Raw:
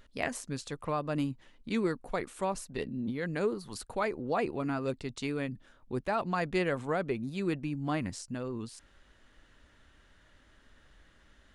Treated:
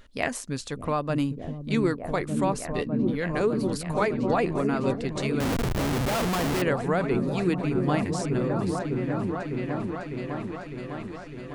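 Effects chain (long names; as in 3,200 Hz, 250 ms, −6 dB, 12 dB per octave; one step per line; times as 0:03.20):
on a send: echo whose low-pass opens from repeat to repeat 604 ms, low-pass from 200 Hz, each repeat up 1 octave, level 0 dB
0:05.40–0:06.62: on the sum: comparator with hysteresis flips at −36 dBFS
level +5.5 dB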